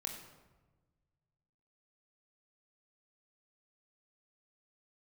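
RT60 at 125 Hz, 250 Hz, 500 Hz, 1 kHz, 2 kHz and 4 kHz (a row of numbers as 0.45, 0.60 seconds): 2.4, 1.6, 1.4, 1.2, 0.95, 0.70 seconds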